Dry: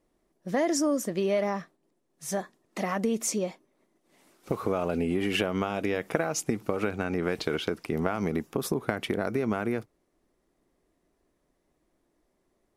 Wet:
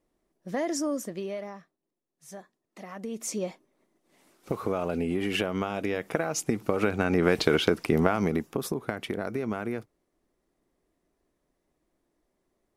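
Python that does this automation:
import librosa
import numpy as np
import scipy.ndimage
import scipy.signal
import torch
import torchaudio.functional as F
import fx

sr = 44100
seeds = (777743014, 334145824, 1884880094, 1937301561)

y = fx.gain(x, sr, db=fx.line((0.99, -3.5), (1.6, -13.0), (2.87, -13.0), (3.45, -1.0), (6.2, -1.0), (7.33, 6.5), (7.9, 6.5), (8.79, -3.0)))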